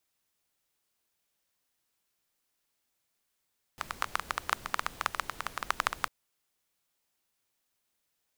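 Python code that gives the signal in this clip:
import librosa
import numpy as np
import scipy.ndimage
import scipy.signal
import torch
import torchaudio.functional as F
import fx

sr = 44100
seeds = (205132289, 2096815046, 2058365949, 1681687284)

y = fx.rain(sr, seeds[0], length_s=2.3, drops_per_s=12.0, hz=1200.0, bed_db=-13.5)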